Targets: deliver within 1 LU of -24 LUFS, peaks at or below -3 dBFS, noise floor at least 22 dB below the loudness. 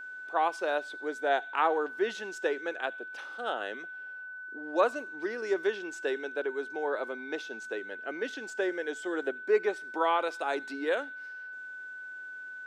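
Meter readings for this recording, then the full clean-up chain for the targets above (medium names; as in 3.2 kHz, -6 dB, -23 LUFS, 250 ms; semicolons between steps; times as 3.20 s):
steady tone 1.5 kHz; tone level -40 dBFS; loudness -32.5 LUFS; peak level -13.0 dBFS; loudness target -24.0 LUFS
-> band-stop 1.5 kHz, Q 30; trim +8.5 dB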